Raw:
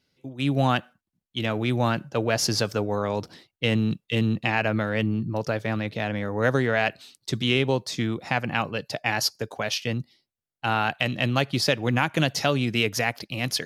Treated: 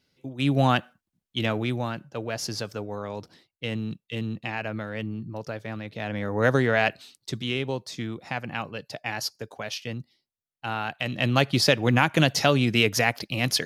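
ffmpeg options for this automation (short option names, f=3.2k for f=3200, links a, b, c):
-af "volume=18dB,afade=t=out:st=1.46:d=0.41:silence=0.375837,afade=t=in:st=5.9:d=0.47:silence=0.375837,afade=t=out:st=6.88:d=0.55:silence=0.446684,afade=t=in:st=10.98:d=0.44:silence=0.375837"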